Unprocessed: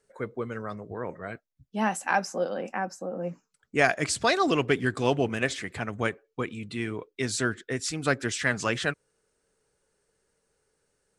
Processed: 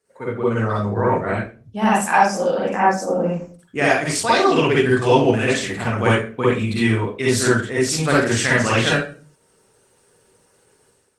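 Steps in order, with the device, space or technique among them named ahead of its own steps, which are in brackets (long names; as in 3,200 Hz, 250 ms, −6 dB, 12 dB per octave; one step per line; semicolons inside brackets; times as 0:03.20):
far-field microphone of a smart speaker (convolution reverb RT60 0.40 s, pre-delay 45 ms, DRR −7.5 dB; high-pass filter 96 Hz 12 dB per octave; automatic gain control gain up to 11 dB; level −1 dB; Opus 20 kbit/s 48,000 Hz)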